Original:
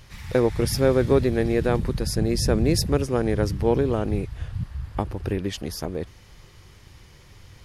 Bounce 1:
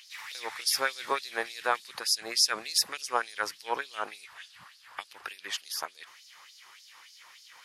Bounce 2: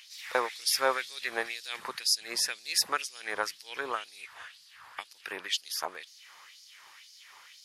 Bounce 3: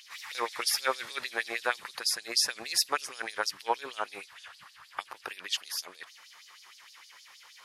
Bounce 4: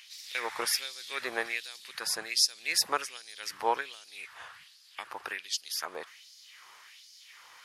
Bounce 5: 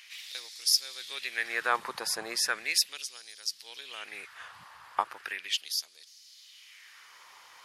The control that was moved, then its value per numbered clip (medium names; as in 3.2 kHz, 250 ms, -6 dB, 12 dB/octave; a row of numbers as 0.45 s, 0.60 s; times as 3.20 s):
LFO high-pass, rate: 3.4 Hz, 2 Hz, 6.4 Hz, 1.3 Hz, 0.37 Hz